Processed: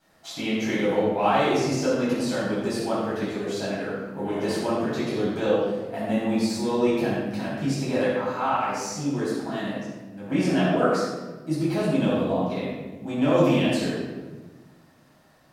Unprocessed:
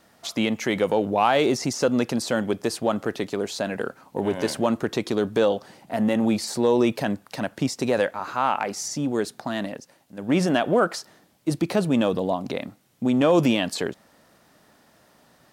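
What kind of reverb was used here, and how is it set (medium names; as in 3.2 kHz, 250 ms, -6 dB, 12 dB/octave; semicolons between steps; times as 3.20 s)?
simulated room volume 830 m³, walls mixed, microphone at 8.1 m; trim -15.5 dB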